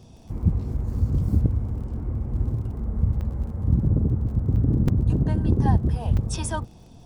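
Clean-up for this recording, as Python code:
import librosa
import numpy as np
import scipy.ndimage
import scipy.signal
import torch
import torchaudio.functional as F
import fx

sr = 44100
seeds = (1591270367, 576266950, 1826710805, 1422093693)

y = fx.fix_declick_ar(x, sr, threshold=6.5)
y = fx.fix_interpolate(y, sr, at_s=(3.21, 4.56, 4.88, 6.17), length_ms=4.2)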